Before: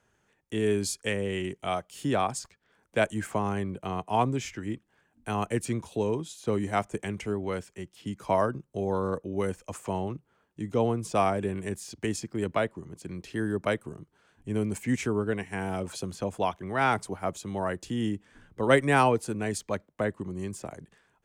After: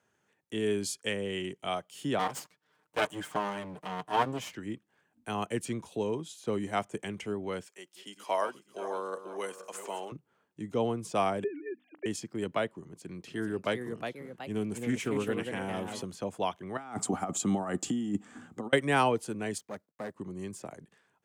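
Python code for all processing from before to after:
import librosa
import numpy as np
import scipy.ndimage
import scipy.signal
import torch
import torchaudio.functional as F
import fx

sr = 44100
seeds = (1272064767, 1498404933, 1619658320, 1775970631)

y = fx.chain(x, sr, fx.lower_of_two(delay_ms=6.6),
    fx.peak_eq(hz=1000.0, db=4.5, octaves=0.53), at=(2.19, 4.55))
y = fx.chain(y, sr, fx.reverse_delay_fb(ms=245, feedback_pct=62, wet_db=-11.5),
    fx.highpass(hz=400.0, slope=12),
    fx.tilt_eq(slope=1.5), at=(7.66, 10.12))
y = fx.chain(y, sr, fx.sine_speech(),
    fx.air_absorb(metres=260.0),
    fx.hum_notches(base_hz=50, count=6), at=(11.44, 12.06))
y = fx.chain(y, sr, fx.echo_pitch(ms=455, semitones=2, count=2, db_per_echo=-6.0),
    fx.doppler_dist(depth_ms=0.19), at=(12.82, 16.02))
y = fx.chain(y, sr, fx.peak_eq(hz=7400.0, db=13.0, octaves=0.34),
    fx.over_compress(threshold_db=-33.0, ratio=-0.5),
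    fx.small_body(hz=(240.0, 750.0, 1200.0), ring_ms=25, db=11), at=(16.77, 18.73))
y = fx.chain(y, sr, fx.law_mismatch(coded='A'),
    fx.tube_stage(drive_db=29.0, bias=0.5),
    fx.peak_eq(hz=2800.0, db=-6.0, octaves=1.0), at=(19.58, 20.16))
y = scipy.signal.sosfilt(scipy.signal.butter(2, 130.0, 'highpass', fs=sr, output='sos'), y)
y = fx.dynamic_eq(y, sr, hz=3100.0, q=5.8, threshold_db=-57.0, ratio=4.0, max_db=6)
y = y * librosa.db_to_amplitude(-3.5)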